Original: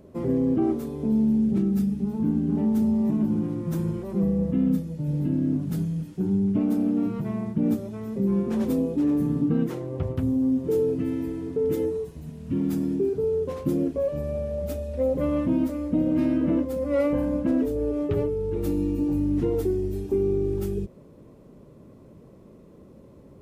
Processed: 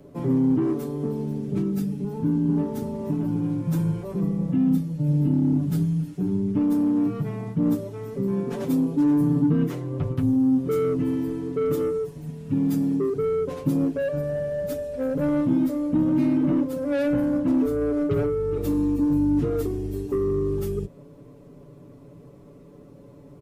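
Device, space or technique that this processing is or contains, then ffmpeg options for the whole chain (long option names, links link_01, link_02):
one-band saturation: -filter_complex "[0:a]aecho=1:1:7:0.85,acrossover=split=280|3000[link_01][link_02][link_03];[link_02]asoftclip=type=tanh:threshold=-23.5dB[link_04];[link_01][link_04][link_03]amix=inputs=3:normalize=0"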